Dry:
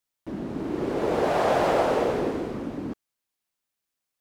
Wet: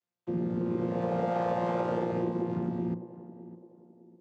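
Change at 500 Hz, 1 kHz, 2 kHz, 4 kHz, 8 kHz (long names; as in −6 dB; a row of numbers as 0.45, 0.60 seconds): −6.5 dB, −6.5 dB, −11.0 dB, −15.0 dB, below −15 dB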